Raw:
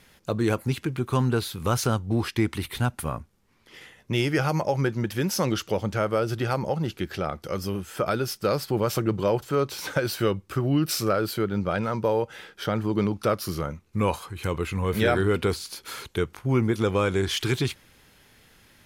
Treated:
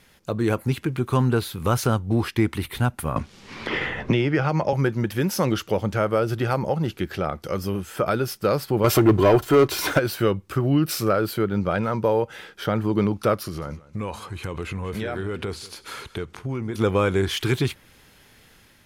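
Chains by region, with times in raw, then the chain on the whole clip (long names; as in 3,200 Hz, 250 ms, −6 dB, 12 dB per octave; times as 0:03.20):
0:03.16–0:04.73: low-pass filter 4,500 Hz + multiband upward and downward compressor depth 100%
0:08.84–0:09.99: comb filter 2.9 ms, depth 49% + leveller curve on the samples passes 2
0:13.43–0:16.75: low-pass filter 9,400 Hz + downward compressor 4 to 1, threshold −29 dBFS + single-tap delay 187 ms −19.5 dB
whole clip: dynamic equaliser 5,800 Hz, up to −5 dB, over −46 dBFS, Q 0.71; automatic gain control gain up to 3 dB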